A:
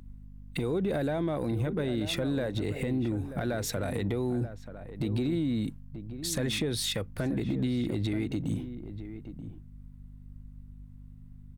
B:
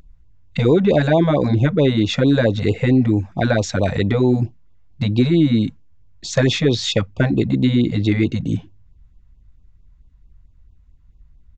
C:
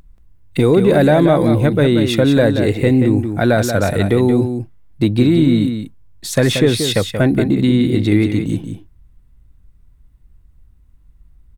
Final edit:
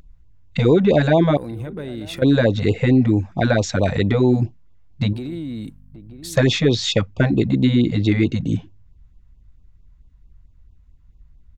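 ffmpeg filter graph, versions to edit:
-filter_complex "[0:a]asplit=2[a][b];[1:a]asplit=3[c][d][e];[c]atrim=end=1.372[f];[a]atrim=start=1.368:end=2.222[g];[d]atrim=start=2.218:end=5.132[h];[b]atrim=start=5.128:end=6.362[i];[e]atrim=start=6.358[j];[f][g]acrossfade=d=0.004:c1=hsin:c2=hsin[k];[k][h]acrossfade=d=0.004:c1=hsin:c2=hsin[l];[l][i]acrossfade=d=0.004:c1=hsin:c2=hsin[m];[m][j]acrossfade=d=0.004:c1=hsin:c2=hsin"

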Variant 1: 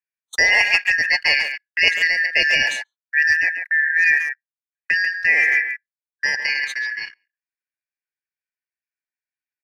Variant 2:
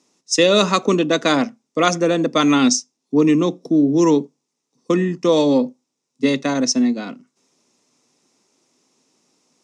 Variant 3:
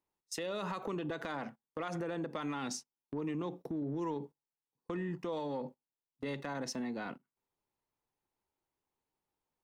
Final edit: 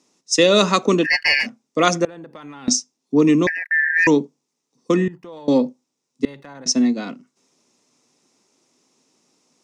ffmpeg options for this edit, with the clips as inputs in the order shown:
-filter_complex "[0:a]asplit=2[a][b];[2:a]asplit=3[c][d][e];[1:a]asplit=6[f][g][h][i][j][k];[f]atrim=end=1.07[l];[a]atrim=start=1.03:end=1.47[m];[g]atrim=start=1.43:end=2.052[n];[c]atrim=start=2.048:end=2.682[o];[h]atrim=start=2.678:end=3.472[p];[b]atrim=start=3.468:end=4.072[q];[i]atrim=start=4.068:end=5.082[r];[d]atrim=start=5.078:end=5.482[s];[j]atrim=start=5.478:end=6.252[t];[e]atrim=start=6.248:end=6.662[u];[k]atrim=start=6.658[v];[l][m]acrossfade=d=0.04:c1=tri:c2=tri[w];[w][n]acrossfade=d=0.04:c1=tri:c2=tri[x];[x][o]acrossfade=d=0.004:c1=hsin:c2=hsin[y];[y][p]acrossfade=d=0.004:c1=hsin:c2=hsin[z];[z][q]acrossfade=d=0.004:c1=hsin:c2=hsin[aa];[aa][r]acrossfade=d=0.004:c1=hsin:c2=hsin[ab];[ab][s]acrossfade=d=0.004:c1=hsin:c2=hsin[ac];[ac][t]acrossfade=d=0.004:c1=hsin:c2=hsin[ad];[ad][u]acrossfade=d=0.004:c1=hsin:c2=hsin[ae];[ae][v]acrossfade=d=0.004:c1=hsin:c2=hsin"

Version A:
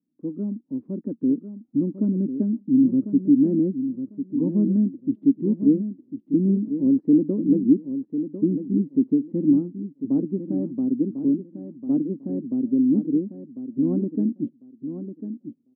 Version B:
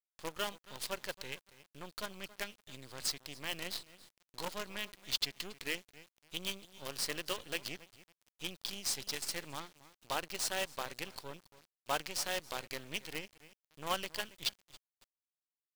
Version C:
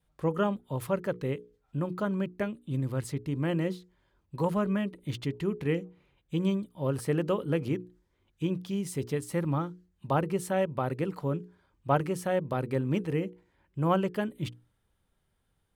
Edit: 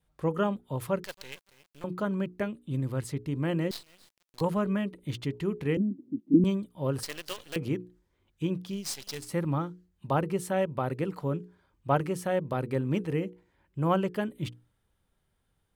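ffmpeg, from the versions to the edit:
-filter_complex "[1:a]asplit=4[a][b][c][d];[2:a]asplit=6[e][f][g][h][i][j];[e]atrim=end=1.042[k];[a]atrim=start=1.038:end=1.842[l];[f]atrim=start=1.838:end=3.712[m];[b]atrim=start=3.708:end=4.412[n];[g]atrim=start=4.408:end=5.772[o];[0:a]atrim=start=5.768:end=6.442[p];[h]atrim=start=6.438:end=7.032[q];[c]atrim=start=7.028:end=7.562[r];[i]atrim=start=7.558:end=8.91[s];[d]atrim=start=8.67:end=9.33[t];[j]atrim=start=9.09[u];[k][l]acrossfade=d=0.004:c1=hsin:c2=hsin[v];[v][m]acrossfade=d=0.004:c1=hsin:c2=hsin[w];[w][n]acrossfade=d=0.004:c1=hsin:c2=hsin[x];[x][o]acrossfade=d=0.004:c1=hsin:c2=hsin[y];[y][p]acrossfade=d=0.004:c1=hsin:c2=hsin[z];[z][q]acrossfade=d=0.004:c1=hsin:c2=hsin[aa];[aa][r]acrossfade=d=0.004:c1=hsin:c2=hsin[ab];[ab][s]acrossfade=d=0.004:c1=hsin:c2=hsin[ac];[ac][t]acrossfade=d=0.24:c1=tri:c2=tri[ad];[ad][u]acrossfade=d=0.24:c1=tri:c2=tri"

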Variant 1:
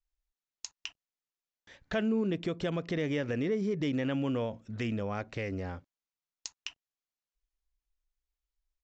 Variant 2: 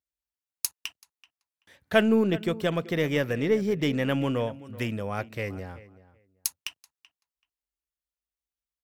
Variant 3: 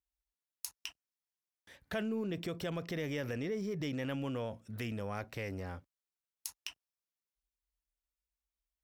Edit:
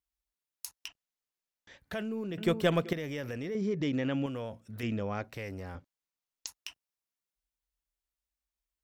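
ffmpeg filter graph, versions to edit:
-filter_complex "[0:a]asplit=4[a][b][c][d];[2:a]asplit=6[e][f][g][h][i][j];[e]atrim=end=0.882[k];[a]atrim=start=0.878:end=1.782[l];[f]atrim=start=1.778:end=2.382[m];[1:a]atrim=start=2.378:end=2.932[n];[g]atrim=start=2.928:end=3.552[o];[b]atrim=start=3.548:end=4.262[p];[h]atrim=start=4.258:end=4.832[q];[c]atrim=start=4.828:end=5.242[r];[i]atrim=start=5.238:end=5.752[s];[d]atrim=start=5.748:end=6.472[t];[j]atrim=start=6.468[u];[k][l]acrossfade=d=0.004:c1=hsin:c2=hsin[v];[v][m]acrossfade=d=0.004:c1=hsin:c2=hsin[w];[w][n]acrossfade=d=0.004:c1=hsin:c2=hsin[x];[x][o]acrossfade=d=0.004:c1=hsin:c2=hsin[y];[y][p]acrossfade=d=0.004:c1=hsin:c2=hsin[z];[z][q]acrossfade=d=0.004:c1=hsin:c2=hsin[aa];[aa][r]acrossfade=d=0.004:c1=hsin:c2=hsin[ab];[ab][s]acrossfade=d=0.004:c1=hsin:c2=hsin[ac];[ac][t]acrossfade=d=0.004:c1=hsin:c2=hsin[ad];[ad][u]acrossfade=d=0.004:c1=hsin:c2=hsin"

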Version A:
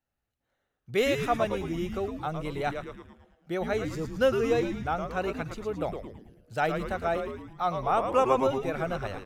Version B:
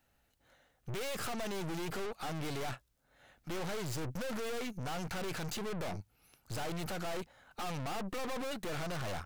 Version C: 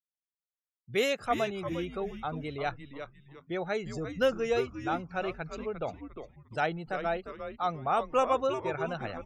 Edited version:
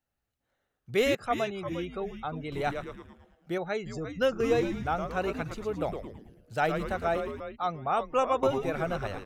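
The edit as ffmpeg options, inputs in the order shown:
-filter_complex "[2:a]asplit=3[a][b][c];[0:a]asplit=4[d][e][f][g];[d]atrim=end=1.152[h];[a]atrim=start=1.148:end=2.522[i];[e]atrim=start=2.518:end=3.582[j];[b]atrim=start=3.578:end=4.402[k];[f]atrim=start=4.398:end=7.402[l];[c]atrim=start=7.398:end=8.432[m];[g]atrim=start=8.428[n];[h][i]acrossfade=d=0.004:c1=hsin:c2=hsin[o];[o][j]acrossfade=d=0.004:c1=hsin:c2=hsin[p];[p][k]acrossfade=d=0.004:c1=hsin:c2=hsin[q];[q][l]acrossfade=d=0.004:c1=hsin:c2=hsin[r];[r][m]acrossfade=d=0.004:c1=hsin:c2=hsin[s];[s][n]acrossfade=d=0.004:c1=hsin:c2=hsin"

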